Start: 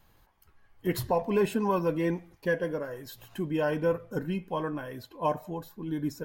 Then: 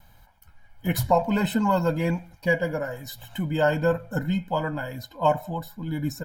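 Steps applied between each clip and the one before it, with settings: gate with hold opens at -59 dBFS; comb 1.3 ms, depth 87%; trim +4.5 dB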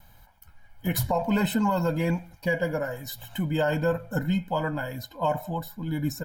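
treble shelf 11 kHz +5 dB; peak limiter -15.5 dBFS, peak gain reduction 8.5 dB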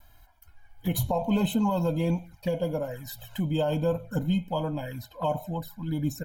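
touch-sensitive flanger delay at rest 3.3 ms, full sweep at -25 dBFS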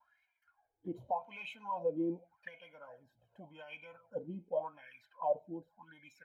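wah-wah 0.86 Hz 330–2400 Hz, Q 8.5; trim +1 dB

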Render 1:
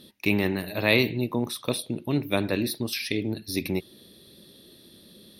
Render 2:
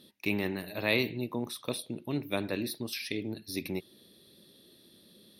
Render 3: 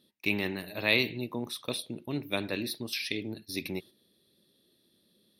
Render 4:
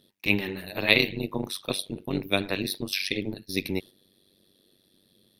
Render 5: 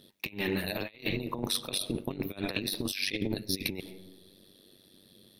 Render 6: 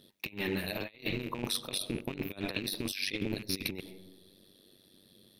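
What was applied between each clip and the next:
bass shelf 67 Hz -10.5 dB; trim -6.5 dB
dynamic bell 3.3 kHz, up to +6 dB, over -45 dBFS, Q 0.71; gate -46 dBFS, range -9 dB; trim -1 dB
AM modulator 96 Hz, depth 85%; trim +8.5 dB
on a send at -23 dB: reverberation RT60 1.1 s, pre-delay 70 ms; on the sum: compressor with a negative ratio -33 dBFS, ratio -0.5
rattle on loud lows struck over -41 dBFS, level -31 dBFS; trim -2.5 dB

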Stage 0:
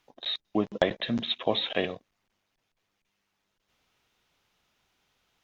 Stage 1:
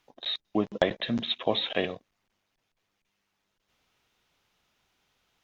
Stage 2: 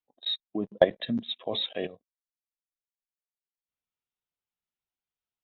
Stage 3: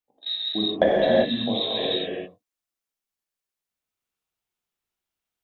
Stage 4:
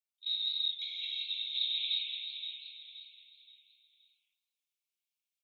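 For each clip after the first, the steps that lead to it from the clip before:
no audible change
level held to a coarse grid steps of 11 dB; spectral contrast expander 1.5:1; trim +5 dB
reverberation, pre-delay 7 ms, DRR -6.5 dB
brick-wall FIR high-pass 2.1 kHz; on a send: feedback delay 523 ms, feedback 36%, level -8 dB; on the sum: modulated delay 161 ms, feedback 45%, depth 180 cents, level -16 dB; trim -5 dB

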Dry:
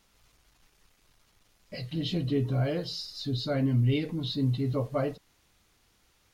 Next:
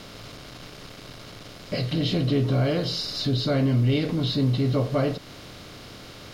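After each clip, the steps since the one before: spectral levelling over time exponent 0.6; in parallel at +2 dB: compression, threshold -34 dBFS, peak gain reduction 13.5 dB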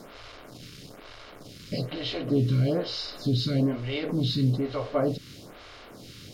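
lamp-driven phase shifter 1.1 Hz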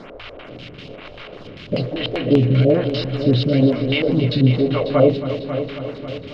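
LFO low-pass square 5.1 Hz 540–2800 Hz; multi-head delay 272 ms, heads first and second, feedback 58%, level -13 dB; trim +7.5 dB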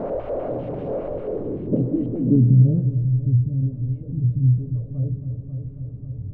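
jump at every zero crossing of -23 dBFS; low-pass sweep 620 Hz -> 100 Hz, 0.90–3.38 s; trim -3 dB

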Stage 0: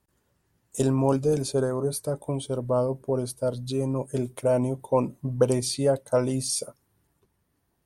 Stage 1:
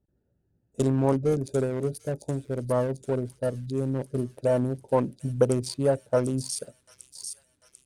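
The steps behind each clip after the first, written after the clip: local Wiener filter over 41 samples; feedback echo behind a high-pass 744 ms, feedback 59%, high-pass 4.8 kHz, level -3.5 dB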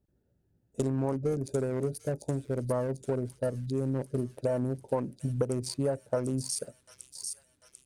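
dynamic bell 3.4 kHz, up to -6 dB, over -56 dBFS, Q 2.3; compression 5:1, threshold -26 dBFS, peak gain reduction 10.5 dB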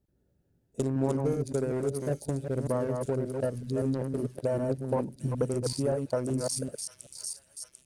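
chunks repeated in reverse 191 ms, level -4 dB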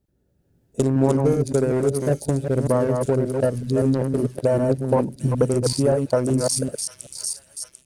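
level rider gain up to 6 dB; trim +3.5 dB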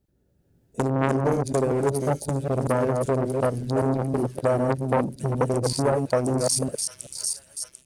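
transformer saturation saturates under 980 Hz

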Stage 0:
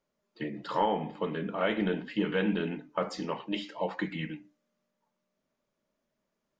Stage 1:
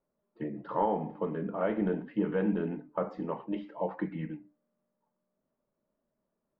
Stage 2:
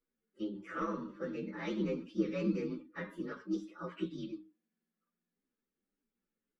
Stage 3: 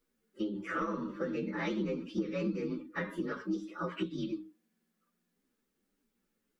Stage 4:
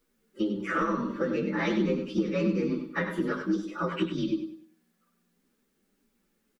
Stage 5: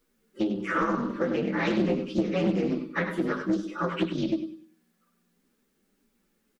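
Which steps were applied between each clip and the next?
low-pass 1.1 kHz 12 dB/octave
frequency axis rescaled in octaves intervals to 125%; static phaser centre 300 Hz, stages 4; trim +1 dB
compression 4:1, threshold -41 dBFS, peak gain reduction 13 dB; trim +9 dB
feedback delay 98 ms, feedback 31%, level -9 dB; trim +6.5 dB
loudspeaker Doppler distortion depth 0.37 ms; trim +1.5 dB

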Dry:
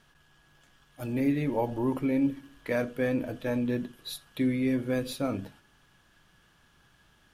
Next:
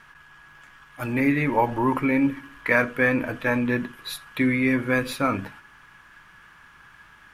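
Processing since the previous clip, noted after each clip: high-order bell 1.5 kHz +11.5 dB; trim +4.5 dB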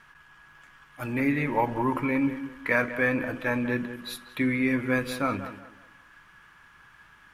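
tape echo 188 ms, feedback 33%, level -10.5 dB, low-pass 2 kHz; trim -4 dB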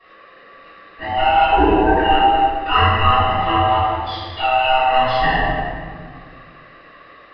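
split-band scrambler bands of 500 Hz; reverberation RT60 1.8 s, pre-delay 3 ms, DRR -17 dB; resampled via 11.025 kHz; trim -8 dB

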